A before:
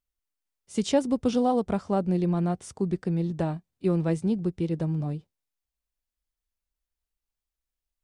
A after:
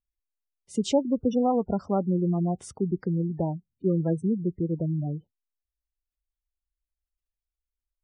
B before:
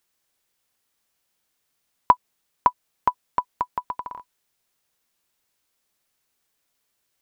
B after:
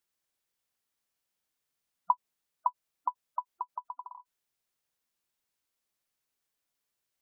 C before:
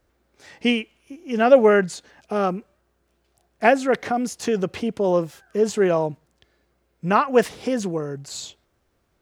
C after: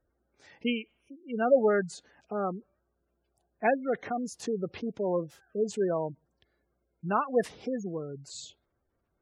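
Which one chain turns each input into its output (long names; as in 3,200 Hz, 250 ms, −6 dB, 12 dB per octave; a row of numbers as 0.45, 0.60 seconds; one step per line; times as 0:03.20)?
gate on every frequency bin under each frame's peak −20 dB strong
normalise the peak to −12 dBFS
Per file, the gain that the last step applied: 0.0, −10.0, −9.0 decibels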